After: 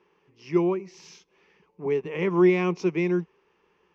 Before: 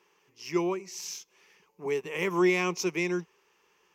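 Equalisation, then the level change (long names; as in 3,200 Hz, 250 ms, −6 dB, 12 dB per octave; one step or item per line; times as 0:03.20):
high-frequency loss of the air 210 metres
low-shelf EQ 460 Hz +9.5 dB
0.0 dB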